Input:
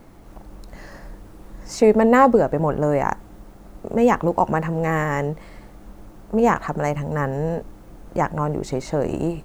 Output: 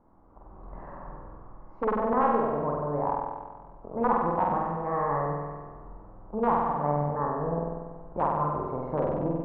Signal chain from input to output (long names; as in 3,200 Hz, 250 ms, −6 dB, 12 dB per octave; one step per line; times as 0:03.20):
automatic gain control gain up to 12 dB
wrap-around overflow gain 2.5 dB
transistor ladder low-pass 1,200 Hz, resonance 55%
flutter between parallel walls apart 8.2 metres, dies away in 1.4 s
level −8.5 dB